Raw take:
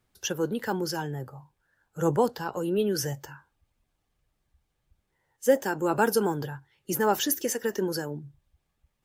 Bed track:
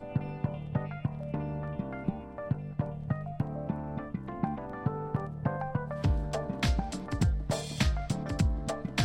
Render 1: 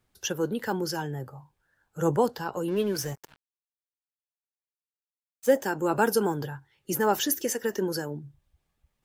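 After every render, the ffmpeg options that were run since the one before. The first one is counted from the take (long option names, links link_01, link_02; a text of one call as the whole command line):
ffmpeg -i in.wav -filter_complex "[0:a]asettb=1/sr,asplit=3[link_01][link_02][link_03];[link_01]atrim=end=2.684[link_04];[link_02]atrim=start=2.68:end=5.51,asetpts=PTS-STARTPTS,afade=type=in:duration=0.004:curve=qsin,afade=type=out:start_time=2.826:duration=0.004:curve=qsin,aeval=exprs='sgn(val(0))*max(abs(val(0))-0.00891,0)':channel_layout=same[link_05];[link_03]atrim=start=5.506[link_06];[link_04][link_05]acrossfade=duration=0.004:curve1=hsin:curve2=qsin[link_07];[link_07][link_06]acrossfade=duration=0.004:curve1=qsin:curve2=hsin" out.wav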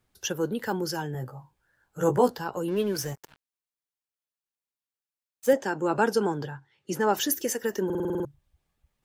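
ffmpeg -i in.wav -filter_complex "[0:a]asettb=1/sr,asplit=3[link_01][link_02][link_03];[link_01]atrim=end=1.134[link_04];[link_02]atrim=start=1.13:end=2.37,asetpts=PTS-STARTPTS,afade=type=in:duration=0.004:curve=qsin,afade=type=out:start_time=1.236:duration=0.004:curve=qsin,asplit=2[link_05][link_06];[link_06]adelay=16,volume=-4dB[link_07];[link_05][link_07]amix=inputs=2:normalize=0,atrim=end_sample=54684[link_08];[link_03]atrim=start=2.366[link_09];[link_04][link_08]acrossfade=duration=0.004:curve1=hsin:curve2=qsin[link_10];[link_10][link_09]acrossfade=duration=0.004:curve1=qsin:curve2=hsin,asettb=1/sr,asplit=3[link_11][link_12][link_13];[link_11]atrim=end=5.534[link_14];[link_12]atrim=start=5.53:end=7.17,asetpts=PTS-STARTPTS,afade=type=in:duration=0.004:curve=qsin,afade=type=out:start_time=1.636:duration=0.004:curve=qsin,highpass=110,lowpass=6600[link_15];[link_13]atrim=start=7.166[link_16];[link_14][link_15]acrossfade=duration=0.004:curve1=hsin:curve2=qsin[link_17];[link_17][link_16]acrossfade=duration=0.004:curve1=qsin:curve2=hsin,asplit=9[link_18][link_19][link_20][link_21][link_22][link_23][link_24][link_25][link_26];[link_18]atrim=end=7.902[link_27];[link_19]atrim=start=7.848:end=7.902[link_28];[link_20]atrim=start=7.848:end=7.902[link_29];[link_21]atrim=start=7.848:end=7.902[link_30];[link_22]atrim=start=7.848:end=7.902[link_31];[link_23]atrim=start=7.848:end=7.902[link_32];[link_24]atrim=start=7.848:end=7.902[link_33];[link_25]atrim=start=7.848:end=7.902[link_34];[link_26]atrim=start=8.248[link_35];[link_27][link_28]acrossfade=duration=0.004:curve1=hsin:curve2=hsin[link_36];[link_36][link_29]acrossfade=duration=0.004:curve1=hsin:curve2=hsin[link_37];[link_37][link_30]acrossfade=duration=0.004:curve1=hsin:curve2=hsin[link_38];[link_38][link_31]acrossfade=duration=0.004:curve1=hsin:curve2=hsin[link_39];[link_39][link_32]acrossfade=duration=0.004:curve1=hsin:curve2=hsin[link_40];[link_40][link_33]acrossfade=duration=0.004:curve1=hsin:curve2=hsin[link_41];[link_41][link_34]acrossfade=duration=0.004:curve1=hsin:curve2=hsin[link_42];[link_42][link_35]acrossfade=duration=0.004:curve1=hsin:curve2=hsin" out.wav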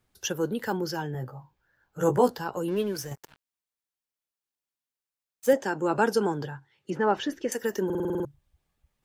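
ffmpeg -i in.wav -filter_complex "[0:a]asettb=1/sr,asplit=3[link_01][link_02][link_03];[link_01]atrim=end=0.774[link_04];[link_02]atrim=start=0.77:end=2,asetpts=PTS-STARTPTS,afade=type=in:duration=0.004:curve=qsin,afade=type=out:start_time=1.226:duration=0.004:curve=qsin,equalizer=frequency=9400:width=1.4:gain=-12[link_05];[link_03]atrim=start=1.996[link_06];[link_04][link_05]acrossfade=duration=0.004:curve1=hsin:curve2=qsin[link_07];[link_07][link_06]acrossfade=duration=0.004:curve1=qsin:curve2=hsin,asettb=1/sr,asplit=3[link_08][link_09][link_10];[link_08]atrim=end=6.904[link_11];[link_09]atrim=start=6.9:end=7.52,asetpts=PTS-STARTPTS,afade=type=in:duration=0.004:curve=qsin,afade=type=out:start_time=0.616:duration=0.004:curve=qsin,lowpass=2700[link_12];[link_10]atrim=start=7.516[link_13];[link_11][link_12]acrossfade=duration=0.004:curve1=hsin:curve2=qsin[link_14];[link_14][link_13]acrossfade=duration=0.004:curve1=qsin:curve2=hsin,asplit=2[link_15][link_16];[link_15]atrim=end=3.11,asetpts=PTS-STARTPTS,afade=type=out:start_time=2.71:duration=0.4:silence=0.501187[link_17];[link_16]atrim=start=3.11,asetpts=PTS-STARTPTS,afade=type=in:duration=0.004:curve=hsin:silence=0.501187[link_18];[link_17][link_18]concat=n=2:v=0:a=1" out.wav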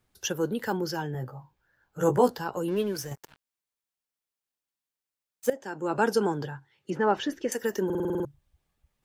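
ffmpeg -i in.wav -filter_complex "[0:a]asplit=2[link_01][link_02];[link_01]atrim=end=5.5,asetpts=PTS-STARTPTS,afade=type=out:start_time=5.496:duration=0.004:curve=hsin:silence=0.133352[link_03];[link_02]atrim=start=5.5,asetpts=PTS-STARTPTS,afade=type=in:duration=0.6:silence=0.133352[link_04];[link_03][link_04]concat=n=2:v=0:a=1" out.wav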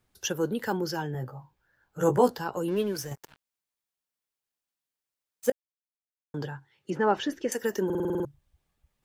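ffmpeg -i in.wav -filter_complex "[0:a]asplit=3[link_01][link_02][link_03];[link_01]atrim=end=5.52,asetpts=PTS-STARTPTS,afade=type=out:start_time=5.516:duration=0.004:curve=hsin[link_04];[link_02]atrim=start=5.52:end=6.34,asetpts=PTS-STARTPTS,volume=0[link_05];[link_03]atrim=start=6.34,asetpts=PTS-STARTPTS,afade=type=in:duration=0.004:curve=hsin[link_06];[link_04][link_05][link_06]concat=n=3:v=0:a=1" out.wav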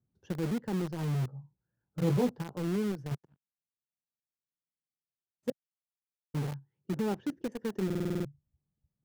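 ffmpeg -i in.wav -filter_complex "[0:a]bandpass=frequency=150:width_type=q:width=1.6:csg=0,asplit=2[link_01][link_02];[link_02]acrusher=bits=5:mix=0:aa=0.000001,volume=-4.5dB[link_03];[link_01][link_03]amix=inputs=2:normalize=0" out.wav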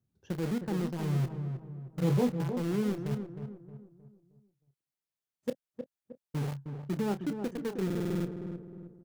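ffmpeg -i in.wav -filter_complex "[0:a]asplit=2[link_01][link_02];[link_02]adelay=29,volume=-11.5dB[link_03];[link_01][link_03]amix=inputs=2:normalize=0,asplit=2[link_04][link_05];[link_05]adelay=312,lowpass=frequency=1100:poles=1,volume=-7dB,asplit=2[link_06][link_07];[link_07]adelay=312,lowpass=frequency=1100:poles=1,volume=0.43,asplit=2[link_08][link_09];[link_09]adelay=312,lowpass=frequency=1100:poles=1,volume=0.43,asplit=2[link_10][link_11];[link_11]adelay=312,lowpass=frequency=1100:poles=1,volume=0.43,asplit=2[link_12][link_13];[link_13]adelay=312,lowpass=frequency=1100:poles=1,volume=0.43[link_14];[link_04][link_06][link_08][link_10][link_12][link_14]amix=inputs=6:normalize=0" out.wav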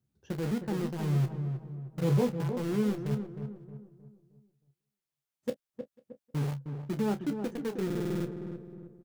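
ffmpeg -i in.wav -filter_complex "[0:a]asplit=2[link_01][link_02];[link_02]adelay=14,volume=-9.5dB[link_03];[link_01][link_03]amix=inputs=2:normalize=0,asplit=2[link_04][link_05];[link_05]adelay=495.6,volume=-28dB,highshelf=frequency=4000:gain=-11.2[link_06];[link_04][link_06]amix=inputs=2:normalize=0" out.wav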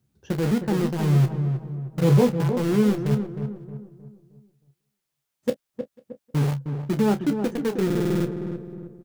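ffmpeg -i in.wav -af "volume=9dB" out.wav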